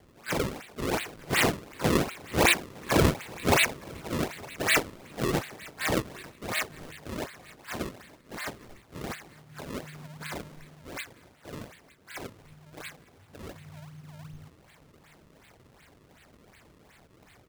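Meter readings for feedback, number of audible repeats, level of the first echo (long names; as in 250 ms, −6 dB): 37%, 2, −22.0 dB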